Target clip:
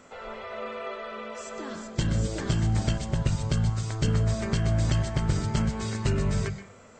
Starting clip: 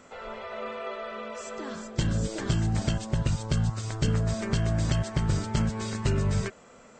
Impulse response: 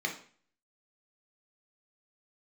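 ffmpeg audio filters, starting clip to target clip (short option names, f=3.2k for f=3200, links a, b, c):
-filter_complex "[0:a]asplit=2[a][b];[b]lowshelf=f=130:t=q:w=1.5:g=13[c];[1:a]atrim=start_sample=2205,adelay=124[d];[c][d]afir=irnorm=-1:irlink=0,volume=-16dB[e];[a][e]amix=inputs=2:normalize=0"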